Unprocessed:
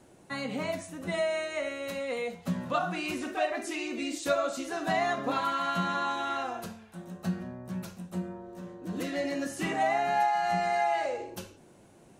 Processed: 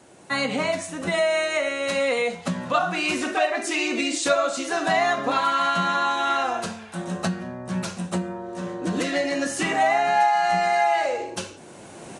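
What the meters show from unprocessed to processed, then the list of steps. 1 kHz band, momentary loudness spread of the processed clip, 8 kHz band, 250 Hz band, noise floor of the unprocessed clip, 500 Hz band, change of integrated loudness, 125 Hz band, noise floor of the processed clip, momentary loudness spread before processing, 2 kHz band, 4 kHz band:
+7.5 dB, 11 LU, +11.5 dB, +6.0 dB, -56 dBFS, +7.5 dB, +8.0 dB, +5.5 dB, -44 dBFS, 12 LU, +9.5 dB, +10.5 dB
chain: recorder AGC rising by 11 dB/s; high-pass 190 Hz 6 dB/octave; peaking EQ 280 Hz -3.5 dB 2.4 oct; resampled via 22.05 kHz; trim +8.5 dB

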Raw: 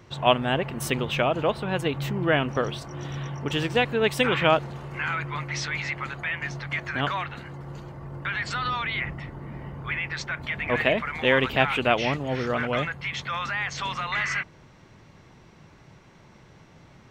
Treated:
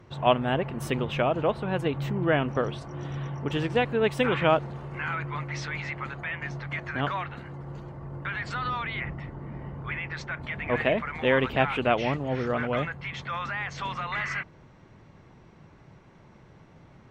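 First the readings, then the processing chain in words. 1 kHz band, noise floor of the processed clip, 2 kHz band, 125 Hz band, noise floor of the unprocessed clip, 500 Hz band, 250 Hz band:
-2.0 dB, -54 dBFS, -4.0 dB, -0.5 dB, -53 dBFS, -1.0 dB, -0.5 dB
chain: treble shelf 2.6 kHz -10.5 dB; MP3 64 kbps 48 kHz

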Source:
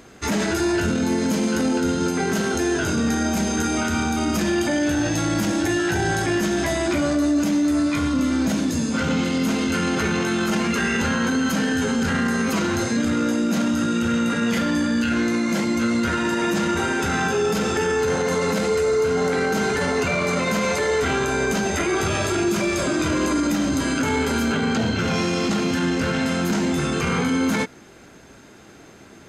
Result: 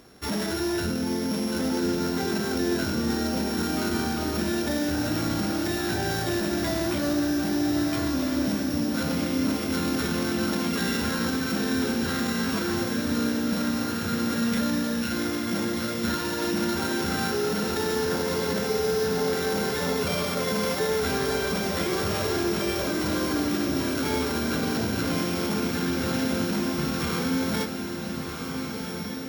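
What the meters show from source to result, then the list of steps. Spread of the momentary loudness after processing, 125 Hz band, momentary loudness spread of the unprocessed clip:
2 LU, -4.5 dB, 1 LU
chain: sorted samples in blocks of 8 samples; echo that smears into a reverb 1440 ms, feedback 46%, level -5 dB; trim -6 dB

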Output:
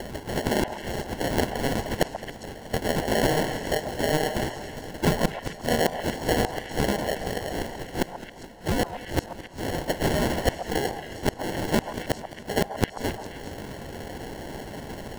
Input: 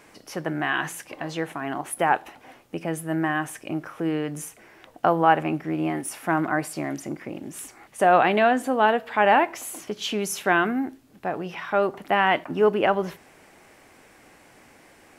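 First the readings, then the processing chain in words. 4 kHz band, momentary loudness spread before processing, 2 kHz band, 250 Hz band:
+3.0 dB, 15 LU, -5.5 dB, -1.5 dB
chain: spectral gate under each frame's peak -15 dB weak; in parallel at +2 dB: upward compressor, threshold -35 dBFS; on the sum: sample-and-hold 36×; inverted gate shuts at -18 dBFS, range -33 dB; on a send: repeats whose band climbs or falls 135 ms, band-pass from 880 Hz, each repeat 1.4 oct, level -5 dB; on the sum: modulated delay 213 ms, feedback 75%, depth 97 cents, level -17 dB; trim +8 dB

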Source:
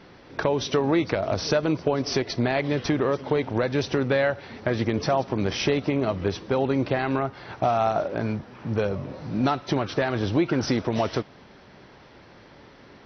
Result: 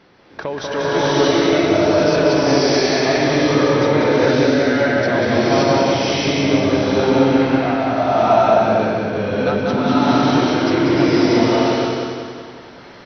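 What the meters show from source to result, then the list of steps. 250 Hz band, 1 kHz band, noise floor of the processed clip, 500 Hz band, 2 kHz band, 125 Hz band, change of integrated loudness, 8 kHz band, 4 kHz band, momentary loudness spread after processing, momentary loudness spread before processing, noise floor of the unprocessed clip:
+10.5 dB, +10.0 dB, -39 dBFS, +10.0 dB, +10.0 dB, +5.5 dB, +9.5 dB, no reading, +10.5 dB, 6 LU, 6 LU, -50 dBFS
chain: bass shelf 140 Hz -7 dB; trance gate "xxxxxxx.x.xx." 128 bpm; feedback delay 189 ms, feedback 51%, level -4 dB; swelling reverb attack 630 ms, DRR -11 dB; trim -1.5 dB

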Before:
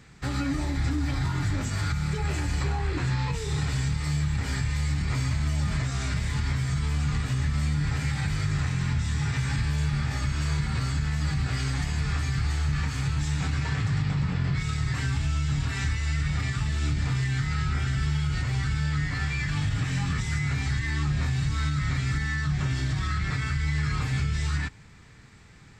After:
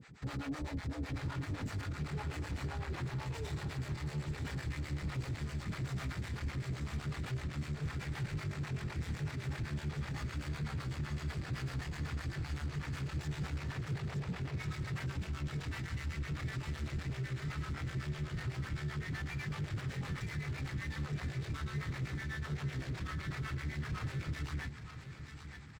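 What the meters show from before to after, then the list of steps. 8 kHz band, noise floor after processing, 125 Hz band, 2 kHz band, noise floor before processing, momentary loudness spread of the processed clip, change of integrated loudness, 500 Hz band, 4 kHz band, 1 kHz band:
-15.0 dB, -46 dBFS, -12.0 dB, -11.0 dB, -48 dBFS, 1 LU, -12.0 dB, -6.0 dB, -12.5 dB, -10.5 dB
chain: high-pass 72 Hz 12 dB/octave; treble shelf 7.6 kHz -9 dB; peak limiter -22.5 dBFS, peak gain reduction 5.5 dB; hard clipper -32.5 dBFS, distortion -9 dB; harmonic tremolo 7.9 Hz, depth 100%, crossover 460 Hz; feedback delay 920 ms, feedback 43%, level -11 dB; slew-rate limiter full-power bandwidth 21 Hz

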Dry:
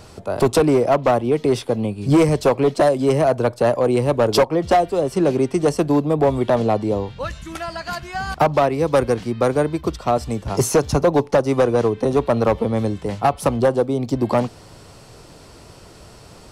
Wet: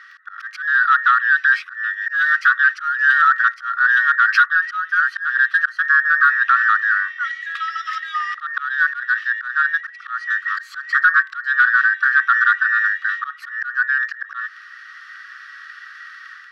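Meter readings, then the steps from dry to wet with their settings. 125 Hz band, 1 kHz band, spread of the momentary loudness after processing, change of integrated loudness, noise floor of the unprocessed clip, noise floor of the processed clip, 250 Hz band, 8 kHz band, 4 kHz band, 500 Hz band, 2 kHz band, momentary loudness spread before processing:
under -40 dB, +2.5 dB, 15 LU, +2.5 dB, -44 dBFS, -41 dBFS, under -40 dB, under -15 dB, -2.5 dB, under -40 dB, +20.0 dB, 8 LU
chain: every band turned upside down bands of 2 kHz; treble shelf 9.3 kHz +5 dB; level rider gain up to 6 dB; crackle 12 per s -24 dBFS; in parallel at -10.5 dB: hard clipper -18.5 dBFS, distortion -5 dB; on the sum: slow attack 237 ms; brick-wall FIR high-pass 1.1 kHz; distance through air 280 m

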